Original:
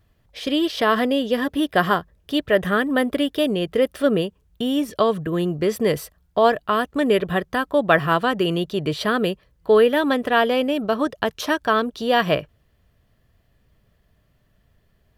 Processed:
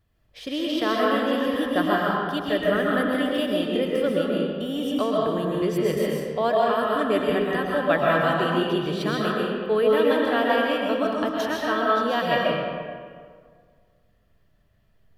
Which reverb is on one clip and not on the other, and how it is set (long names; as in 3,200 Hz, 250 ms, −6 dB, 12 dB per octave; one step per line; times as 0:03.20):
comb and all-pass reverb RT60 1.9 s, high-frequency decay 0.6×, pre-delay 90 ms, DRR −4 dB
level −8 dB